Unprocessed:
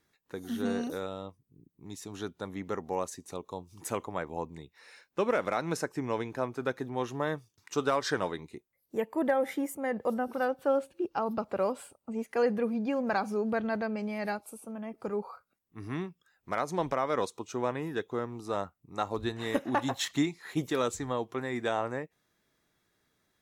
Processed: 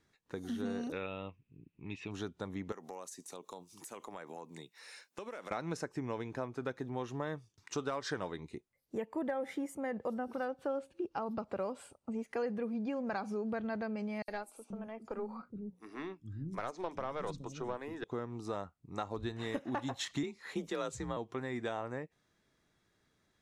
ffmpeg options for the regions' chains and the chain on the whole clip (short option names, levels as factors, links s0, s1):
-filter_complex "[0:a]asettb=1/sr,asplit=3[s0][s1][s2];[s0]atrim=end=0.924[s3];[s1]atrim=start=0.92:end=2.11,asetpts=PTS-STARTPTS,afade=t=in:d=0.004:c=qsin,afade=t=out:st=1.186:d=0.004:c=qsin,lowpass=f=2600:t=q:w=11,bandreject=f=730:w=18[s4];[s2]atrim=start=2.106[s5];[s3][s4]acrossfade=d=0.004:c1=hsin:c2=qsin[s6];[s6][s5]acrossfade=d=0.004:c1=qsin:c2=hsin,asettb=1/sr,asplit=3[s7][s8][s9];[s7]atrim=end=2.724[s10];[s8]atrim=start=2.72:end=5.51,asetpts=PTS-STARTPTS,afade=t=in:d=0.004:c=qsin,afade=t=out:st=2.786:d=0.004:c=qsin,highpass=f=130:w=0.5412,highpass=f=130:w=1.3066,aemphasis=mode=production:type=bsi,acompressor=threshold=0.00891:ratio=6:attack=3.2:release=140:knee=1:detection=peak[s11];[s9]atrim=start=5.506[s12];[s10][s11]acrossfade=d=0.004:c1=hsin:c2=qsin[s13];[s13][s12]acrossfade=d=0.004:c1=qsin:c2=hsin,asettb=1/sr,asplit=3[s14][s15][s16];[s14]atrim=end=14.224[s17];[s15]atrim=start=14.22:end=18.04,asetpts=PTS-STARTPTS,afade=t=in:d=0.004:c=qsin,afade=t=out:st=3.816:d=0.004:c=qsin,bandreject=f=60:t=h:w=6,bandreject=f=120:t=h:w=6,bandreject=f=180:t=h:w=6,bandreject=f=240:t=h:w=6,bandreject=f=300:t=h:w=6,acrossover=split=260|6000[s18][s19][s20];[s19]adelay=60[s21];[s18]adelay=480[s22];[s22][s21][s20]amix=inputs=3:normalize=0,atrim=end_sample=168462,aeval=exprs='(tanh(11.2*val(0)+0.45)-tanh(0.45))/11.2':c=same[s23];[s16]atrim=start=18.036[s24];[s17][s23]acrossfade=d=0.004:c1=hsin:c2=qsin[s25];[s25][s24]acrossfade=d=0.004:c1=qsin:c2=hsin,asettb=1/sr,asplit=3[s26][s27][s28];[s26]atrim=end=20.234[s29];[s27]atrim=start=20.23:end=21.17,asetpts=PTS-STARTPTS,afade=t=in:d=0.004:c=qsin,afade=t=out:st=0.936:d=0.004:c=qsin,asubboost=boost=12:cutoff=79,afreqshift=42[s30];[s28]atrim=start=21.166[s31];[s29][s30]acrossfade=d=0.004:c1=hsin:c2=qsin[s32];[s32][s31]acrossfade=d=0.004:c1=qsin:c2=hsin,lowpass=8700,lowshelf=f=210:g=4.5,acompressor=threshold=0.0158:ratio=2.5,volume=0.891"